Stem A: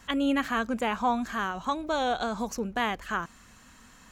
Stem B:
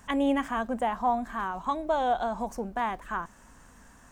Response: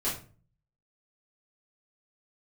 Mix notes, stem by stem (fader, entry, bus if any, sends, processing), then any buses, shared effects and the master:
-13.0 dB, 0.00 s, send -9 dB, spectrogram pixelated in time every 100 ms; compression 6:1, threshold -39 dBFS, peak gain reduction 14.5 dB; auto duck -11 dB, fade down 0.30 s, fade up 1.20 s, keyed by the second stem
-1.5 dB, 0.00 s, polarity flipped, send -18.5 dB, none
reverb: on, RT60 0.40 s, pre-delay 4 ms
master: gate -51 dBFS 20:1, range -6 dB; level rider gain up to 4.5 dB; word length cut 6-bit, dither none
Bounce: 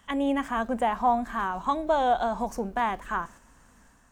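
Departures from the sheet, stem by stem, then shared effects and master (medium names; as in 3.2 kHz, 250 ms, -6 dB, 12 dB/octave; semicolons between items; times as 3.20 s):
stem B: send off; master: missing word length cut 6-bit, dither none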